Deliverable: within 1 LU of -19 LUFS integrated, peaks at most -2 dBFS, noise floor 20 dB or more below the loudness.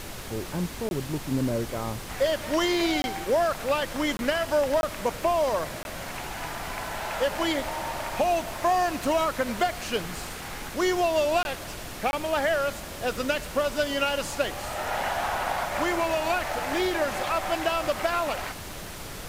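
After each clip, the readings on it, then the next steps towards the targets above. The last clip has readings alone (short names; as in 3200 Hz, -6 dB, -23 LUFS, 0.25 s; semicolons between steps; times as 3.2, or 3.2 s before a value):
dropouts 7; longest dropout 21 ms; noise floor -38 dBFS; noise floor target -48 dBFS; loudness -27.5 LUFS; peak -11.0 dBFS; loudness target -19.0 LUFS
-> interpolate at 0.89/3.02/4.17/4.81/5.83/11.43/12.11, 21 ms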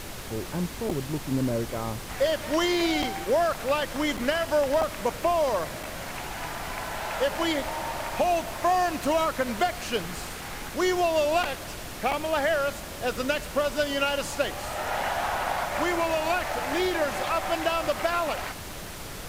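dropouts 0; noise floor -38 dBFS; noise floor target -48 dBFS
-> noise print and reduce 10 dB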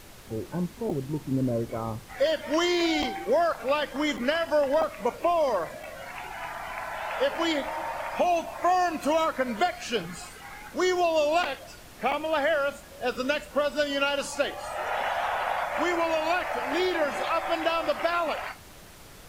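noise floor -47 dBFS; noise floor target -48 dBFS
-> noise print and reduce 6 dB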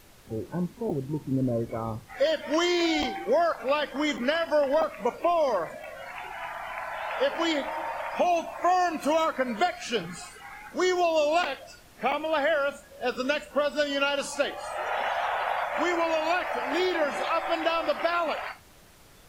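noise floor -53 dBFS; loudness -27.5 LUFS; peak -11.5 dBFS; loudness target -19.0 LUFS
-> gain +8.5 dB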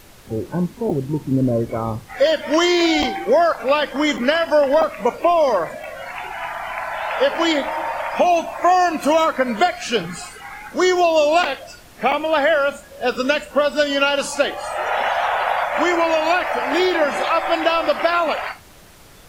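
loudness -19.0 LUFS; peak -3.0 dBFS; noise floor -44 dBFS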